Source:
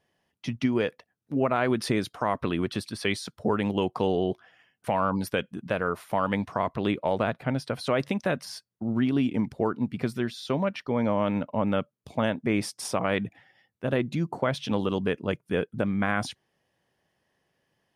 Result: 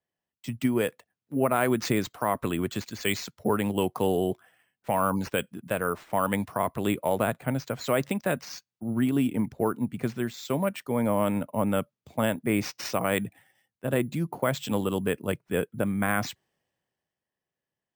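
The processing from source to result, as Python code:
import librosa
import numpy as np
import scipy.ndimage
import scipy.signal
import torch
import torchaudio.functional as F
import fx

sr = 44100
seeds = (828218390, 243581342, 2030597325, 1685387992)

y = np.repeat(x[::4], 4)[:len(x)]
y = fx.band_widen(y, sr, depth_pct=40)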